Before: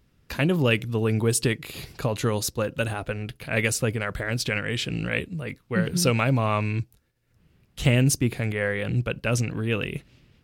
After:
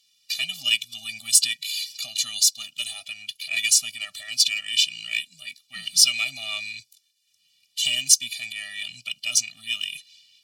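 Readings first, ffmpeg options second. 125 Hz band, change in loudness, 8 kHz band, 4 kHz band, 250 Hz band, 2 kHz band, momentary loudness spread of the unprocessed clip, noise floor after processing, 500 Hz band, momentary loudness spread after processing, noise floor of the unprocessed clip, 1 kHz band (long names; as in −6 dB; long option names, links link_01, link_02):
below −30 dB, +3.0 dB, +11.0 dB, +12.0 dB, below −25 dB, −0.5 dB, 10 LU, −68 dBFS, below −25 dB, 15 LU, −66 dBFS, −18.0 dB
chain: -af "bandpass=frequency=2500:width_type=q:width=0.62:csg=0,aexciter=amount=15.3:drive=9.4:freq=2600,afftfilt=real='re*eq(mod(floor(b*sr/1024/280),2),0)':imag='im*eq(mod(floor(b*sr/1024/280),2),0)':win_size=1024:overlap=0.75,volume=-10.5dB"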